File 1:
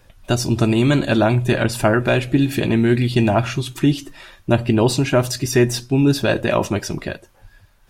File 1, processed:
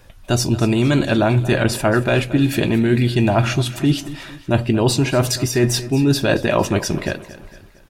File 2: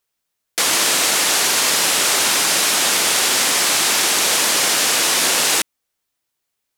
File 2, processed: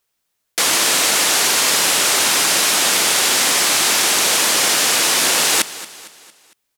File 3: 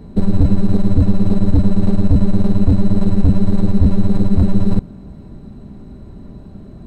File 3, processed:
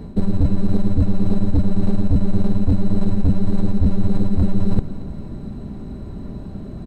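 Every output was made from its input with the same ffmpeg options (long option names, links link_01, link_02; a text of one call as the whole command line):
ffmpeg -i in.wav -af "areverse,acompressor=threshold=-16dB:ratio=6,areverse,aecho=1:1:228|456|684|912:0.15|0.0703|0.0331|0.0155,volume=4dB" out.wav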